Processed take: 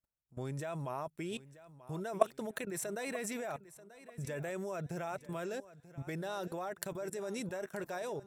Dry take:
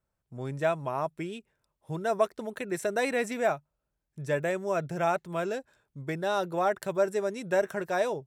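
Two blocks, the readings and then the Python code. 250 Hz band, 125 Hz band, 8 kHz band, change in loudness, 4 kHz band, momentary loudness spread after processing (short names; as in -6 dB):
-6.5 dB, -5.0 dB, -0.5 dB, -9.5 dB, -7.0 dB, 9 LU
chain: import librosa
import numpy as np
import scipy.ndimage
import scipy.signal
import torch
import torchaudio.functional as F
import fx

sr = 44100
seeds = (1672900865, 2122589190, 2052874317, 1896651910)

y = fx.high_shelf(x, sr, hz=6400.0, db=8.5)
y = fx.level_steps(y, sr, step_db=20)
y = fx.echo_feedback(y, sr, ms=936, feedback_pct=30, wet_db=-17.0)
y = y * librosa.db_to_amplitude(1.0)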